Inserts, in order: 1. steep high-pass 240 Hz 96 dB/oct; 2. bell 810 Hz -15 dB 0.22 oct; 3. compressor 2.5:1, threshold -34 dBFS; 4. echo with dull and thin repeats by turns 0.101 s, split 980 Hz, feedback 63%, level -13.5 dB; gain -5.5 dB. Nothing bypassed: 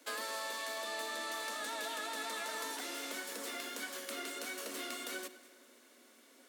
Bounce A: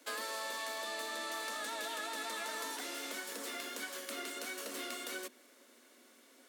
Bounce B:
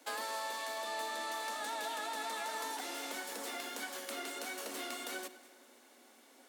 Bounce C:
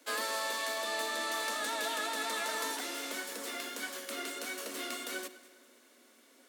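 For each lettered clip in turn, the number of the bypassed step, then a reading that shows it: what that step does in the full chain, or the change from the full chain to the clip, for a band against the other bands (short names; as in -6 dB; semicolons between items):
4, echo-to-direct -15.5 dB to none; 2, 1 kHz band +4.0 dB; 3, loudness change +4.5 LU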